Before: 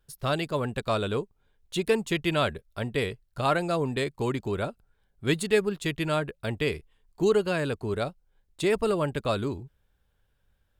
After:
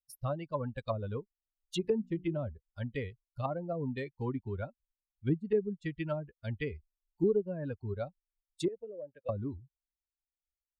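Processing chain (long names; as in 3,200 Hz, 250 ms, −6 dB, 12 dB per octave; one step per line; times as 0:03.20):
spectral dynamics exaggerated over time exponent 2
0:01.81–0:02.36: mains-hum notches 60/120/180/240/300/360 Hz
treble cut that deepens with the level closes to 410 Hz, closed at −26.5 dBFS
0:08.68–0:09.29: formant filter e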